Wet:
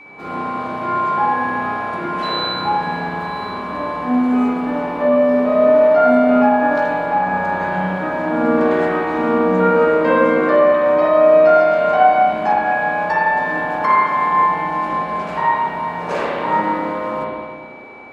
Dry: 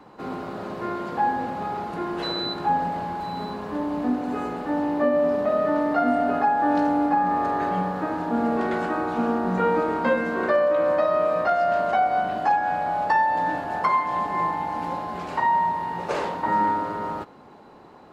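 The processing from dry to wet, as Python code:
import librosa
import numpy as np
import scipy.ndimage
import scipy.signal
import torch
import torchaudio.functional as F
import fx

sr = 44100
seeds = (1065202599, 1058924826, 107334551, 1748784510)

y = fx.low_shelf(x, sr, hz=280.0, db=-5.0)
y = fx.rev_spring(y, sr, rt60_s=1.8, pass_ms=(32, 52), chirp_ms=50, drr_db=-6.5)
y = y + 10.0 ** (-40.0 / 20.0) * np.sin(2.0 * np.pi * 2300.0 * np.arange(len(y)) / sr)
y = y * librosa.db_to_amplitude(1.0)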